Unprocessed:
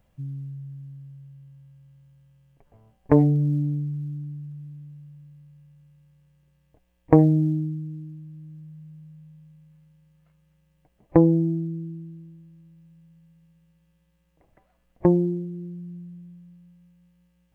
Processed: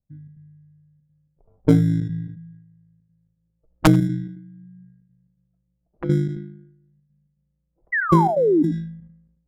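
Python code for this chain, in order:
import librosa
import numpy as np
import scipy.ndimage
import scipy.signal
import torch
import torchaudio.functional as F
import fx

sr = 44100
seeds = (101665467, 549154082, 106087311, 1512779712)

p1 = fx.tilt_shelf(x, sr, db=5.5, hz=1100.0)
p2 = fx.sample_hold(p1, sr, seeds[0], rate_hz=1800.0, jitter_pct=0)
p3 = p1 + (p2 * 10.0 ** (-6.0 / 20.0))
p4 = (np.mod(10.0 ** (-3.0 / 20.0) * p3 + 1.0, 2.0) - 1.0) / 10.0 ** (-3.0 / 20.0)
p5 = fx.stretch_grains(p4, sr, factor=0.54, grain_ms=38.0)
p6 = fx.spec_paint(p5, sr, seeds[1], shape='fall', start_s=7.92, length_s=0.71, low_hz=280.0, high_hz=2000.0, level_db=-11.0)
p7 = fx.step_gate(p6, sr, bpm=165, pattern='.xx.xxxxxxx', floor_db=-12.0, edge_ms=4.5)
p8 = fx.env_lowpass(p7, sr, base_hz=1600.0, full_db=-14.5)
p9 = fx.noise_reduce_blind(p8, sr, reduce_db=12)
p10 = fx.env_lowpass(p9, sr, base_hz=1400.0, full_db=-9.5)
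p11 = fx.low_shelf(p10, sr, hz=500.0, db=7.5)
p12 = p11 + fx.echo_single(p11, sr, ms=88, db=-23.5, dry=0)
p13 = fx.sustainer(p12, sr, db_per_s=66.0)
y = p13 * 10.0 ** (-10.0 / 20.0)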